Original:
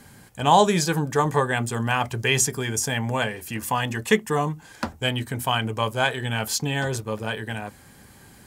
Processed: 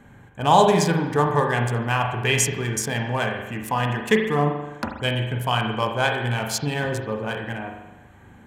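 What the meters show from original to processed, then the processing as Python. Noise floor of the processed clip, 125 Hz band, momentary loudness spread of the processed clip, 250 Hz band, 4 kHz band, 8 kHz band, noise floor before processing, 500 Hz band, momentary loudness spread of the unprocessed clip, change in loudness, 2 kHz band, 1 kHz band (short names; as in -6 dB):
-49 dBFS, +2.5 dB, 11 LU, +1.5 dB, -1.0 dB, -1.5 dB, -50 dBFS, +2.0 dB, 9 LU, +1.5 dB, +1.0 dB, +1.5 dB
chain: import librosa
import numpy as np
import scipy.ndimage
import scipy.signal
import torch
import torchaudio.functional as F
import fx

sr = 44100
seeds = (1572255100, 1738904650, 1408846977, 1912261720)

y = fx.wiener(x, sr, points=9)
y = fx.rev_spring(y, sr, rt60_s=1.0, pass_ms=(41,), chirp_ms=40, drr_db=3.0)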